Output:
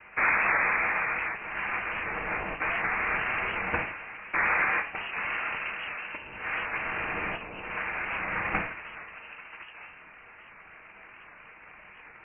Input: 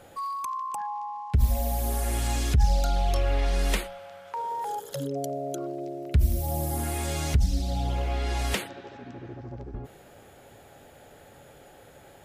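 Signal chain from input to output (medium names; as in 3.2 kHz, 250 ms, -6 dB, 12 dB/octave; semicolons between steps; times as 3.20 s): high-pass 890 Hz 12 dB/octave; noise-vocoded speech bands 3; reverberation RT60 0.45 s, pre-delay 7 ms, DRR 2.5 dB; frequency inversion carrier 2.9 kHz; warped record 78 rpm, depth 100 cents; trim +7 dB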